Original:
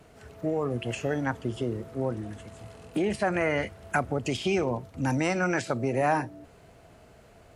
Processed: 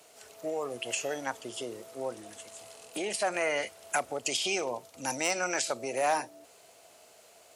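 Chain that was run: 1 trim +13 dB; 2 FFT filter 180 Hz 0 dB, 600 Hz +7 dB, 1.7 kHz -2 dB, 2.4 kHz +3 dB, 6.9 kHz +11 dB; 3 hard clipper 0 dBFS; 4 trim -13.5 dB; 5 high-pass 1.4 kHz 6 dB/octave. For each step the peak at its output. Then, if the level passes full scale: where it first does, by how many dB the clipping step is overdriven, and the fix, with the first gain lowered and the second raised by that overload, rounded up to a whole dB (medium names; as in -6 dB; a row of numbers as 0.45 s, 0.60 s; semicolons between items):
-0.5 dBFS, +3.5 dBFS, 0.0 dBFS, -13.5 dBFS, -14.0 dBFS; step 2, 3.5 dB; step 1 +9 dB, step 4 -9.5 dB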